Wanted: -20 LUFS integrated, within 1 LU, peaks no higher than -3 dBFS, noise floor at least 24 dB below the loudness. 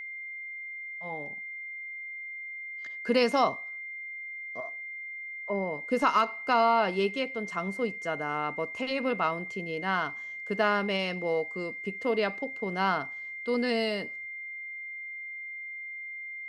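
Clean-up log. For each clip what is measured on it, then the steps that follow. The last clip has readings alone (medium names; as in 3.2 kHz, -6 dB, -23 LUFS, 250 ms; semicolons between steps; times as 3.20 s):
steady tone 2.1 kHz; tone level -37 dBFS; loudness -31.0 LUFS; peak level -11.0 dBFS; loudness target -20.0 LUFS
-> band-stop 2.1 kHz, Q 30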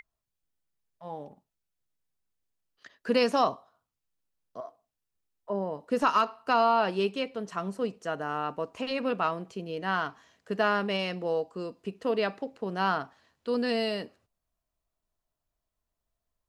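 steady tone not found; loudness -29.5 LUFS; peak level -11.5 dBFS; loudness target -20.0 LUFS
-> trim +9.5 dB; peak limiter -3 dBFS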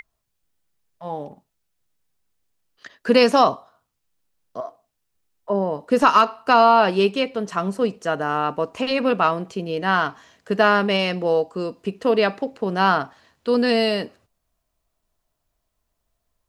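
loudness -20.0 LUFS; peak level -3.0 dBFS; noise floor -77 dBFS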